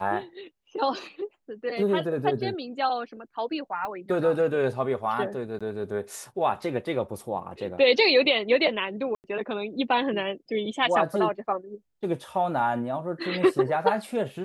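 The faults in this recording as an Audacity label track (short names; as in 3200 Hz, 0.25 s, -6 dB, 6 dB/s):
3.850000	3.850000	pop -21 dBFS
5.590000	5.610000	gap 16 ms
9.150000	9.240000	gap 89 ms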